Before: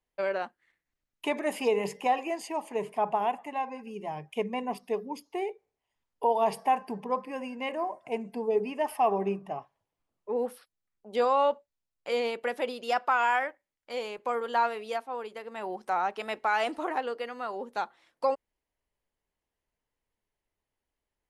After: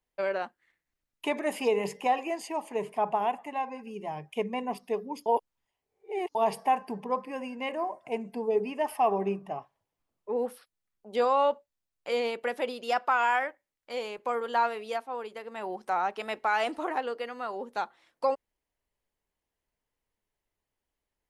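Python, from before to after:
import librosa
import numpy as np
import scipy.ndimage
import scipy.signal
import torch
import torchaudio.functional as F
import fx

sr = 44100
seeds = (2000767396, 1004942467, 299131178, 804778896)

y = fx.edit(x, sr, fx.reverse_span(start_s=5.26, length_s=1.09), tone=tone)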